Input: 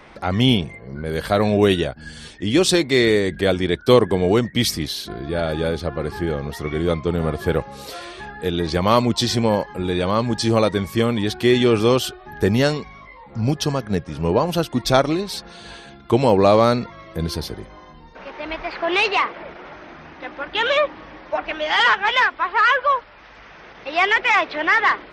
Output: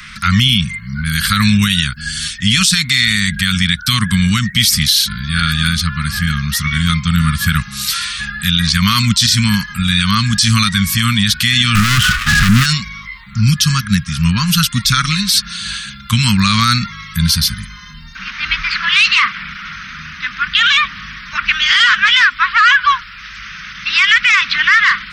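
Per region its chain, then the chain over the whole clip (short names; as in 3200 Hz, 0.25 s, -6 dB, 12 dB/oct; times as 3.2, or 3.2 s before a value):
11.75–12.66 LPF 1900 Hz 24 dB/oct + sample leveller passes 5
whole clip: elliptic band-stop 200–1300 Hz, stop band 40 dB; high shelf 2500 Hz +11 dB; maximiser +12.5 dB; gain -1 dB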